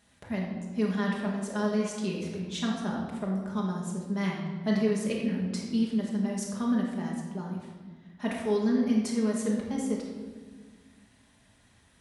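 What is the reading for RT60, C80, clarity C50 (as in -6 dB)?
1.5 s, 4.0 dB, 2.0 dB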